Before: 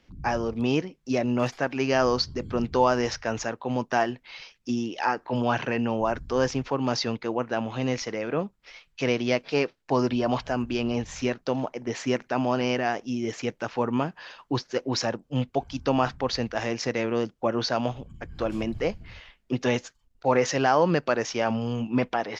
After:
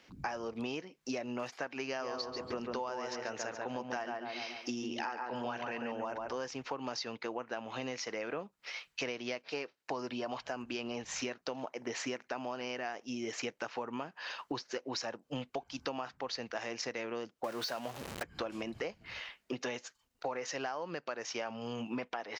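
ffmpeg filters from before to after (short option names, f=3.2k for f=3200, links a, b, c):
-filter_complex "[0:a]asplit=3[a][b][c];[a]afade=t=out:st=2:d=0.02[d];[b]asplit=2[e][f];[f]adelay=141,lowpass=f=2k:p=1,volume=-3.5dB,asplit=2[g][h];[h]adelay=141,lowpass=f=2k:p=1,volume=0.38,asplit=2[i][j];[j]adelay=141,lowpass=f=2k:p=1,volume=0.38,asplit=2[k][l];[l]adelay=141,lowpass=f=2k:p=1,volume=0.38,asplit=2[m][n];[n]adelay=141,lowpass=f=2k:p=1,volume=0.38[o];[e][g][i][k][m][o]amix=inputs=6:normalize=0,afade=t=in:st=2:d=0.02,afade=t=out:st=6.34:d=0.02[p];[c]afade=t=in:st=6.34:d=0.02[q];[d][p][q]amix=inputs=3:normalize=0,asettb=1/sr,asplit=3[r][s][t];[r]atrim=end=17.444[u];[s]atrim=start=17.44:end=18.23,asetpts=PTS-STARTPTS,afade=t=in:d=0.004:c=qsin,afade=t=out:st=0.786:d=0.004:c=qsin,aeval=exprs='val(0)+0.5*0.0335*sgn(val(0))':c=same[v];[t]atrim=start=18.226[w];[u][v]acrossfade=d=0.004:c1=hsin:c2=qsin[x];[x][w]acrossfade=d=0.004:c1=qsin:c2=hsin,highpass=f=560:p=1,bandreject=f=3.4k:w=25,acompressor=threshold=-40dB:ratio=12,volume=5dB"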